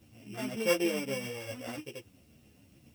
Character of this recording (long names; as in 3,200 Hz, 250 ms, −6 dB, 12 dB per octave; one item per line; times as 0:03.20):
a buzz of ramps at a fixed pitch in blocks of 16 samples
tremolo triangle 7.4 Hz, depth 45%
a quantiser's noise floor 12 bits, dither triangular
a shimmering, thickened sound